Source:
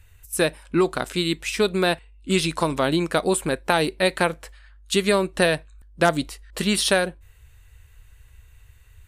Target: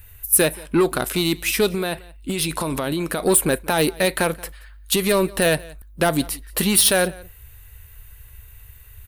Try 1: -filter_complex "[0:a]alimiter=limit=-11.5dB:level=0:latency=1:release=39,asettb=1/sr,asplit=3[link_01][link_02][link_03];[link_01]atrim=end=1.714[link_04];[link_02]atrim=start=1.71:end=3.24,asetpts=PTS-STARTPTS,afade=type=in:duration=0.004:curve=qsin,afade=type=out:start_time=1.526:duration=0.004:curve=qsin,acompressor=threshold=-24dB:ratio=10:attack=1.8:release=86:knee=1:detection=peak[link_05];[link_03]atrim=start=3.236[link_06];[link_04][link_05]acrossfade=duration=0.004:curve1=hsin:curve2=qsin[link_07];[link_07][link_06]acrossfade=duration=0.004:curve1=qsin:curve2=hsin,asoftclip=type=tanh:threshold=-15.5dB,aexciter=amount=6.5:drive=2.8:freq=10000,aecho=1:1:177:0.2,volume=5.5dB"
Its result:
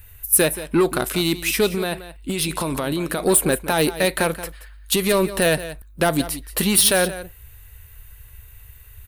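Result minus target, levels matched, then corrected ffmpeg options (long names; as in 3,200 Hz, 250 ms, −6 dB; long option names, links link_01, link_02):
echo-to-direct +8.5 dB
-filter_complex "[0:a]alimiter=limit=-11.5dB:level=0:latency=1:release=39,asettb=1/sr,asplit=3[link_01][link_02][link_03];[link_01]atrim=end=1.714[link_04];[link_02]atrim=start=1.71:end=3.24,asetpts=PTS-STARTPTS,afade=type=in:duration=0.004:curve=qsin,afade=type=out:start_time=1.526:duration=0.004:curve=qsin,acompressor=threshold=-24dB:ratio=10:attack=1.8:release=86:knee=1:detection=peak[link_05];[link_03]atrim=start=3.236[link_06];[link_04][link_05]acrossfade=duration=0.004:curve1=hsin:curve2=qsin[link_07];[link_07][link_06]acrossfade=duration=0.004:curve1=qsin:curve2=hsin,asoftclip=type=tanh:threshold=-15.5dB,aexciter=amount=6.5:drive=2.8:freq=10000,aecho=1:1:177:0.075,volume=5.5dB"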